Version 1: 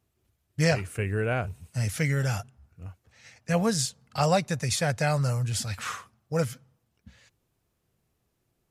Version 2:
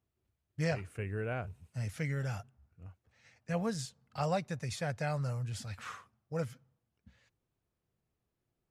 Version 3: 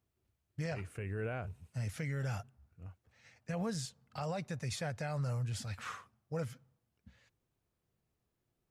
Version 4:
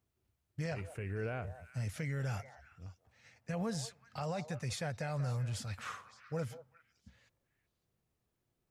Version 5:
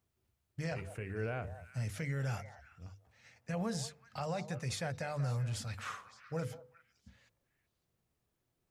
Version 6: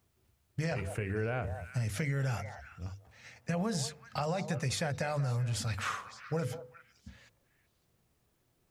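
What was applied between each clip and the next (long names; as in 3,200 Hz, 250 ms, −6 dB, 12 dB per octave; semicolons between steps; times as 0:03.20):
high-shelf EQ 4,400 Hz −9 dB; level −9 dB
brickwall limiter −30.5 dBFS, peak gain reduction 10 dB; level +1 dB
echo through a band-pass that steps 188 ms, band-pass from 700 Hz, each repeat 1.4 octaves, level −10 dB
mains-hum notches 50/100/150/200/250/300/350/400/450/500 Hz; level +1 dB
downward compressor, threshold −38 dBFS, peak gain reduction 7 dB; level +8.5 dB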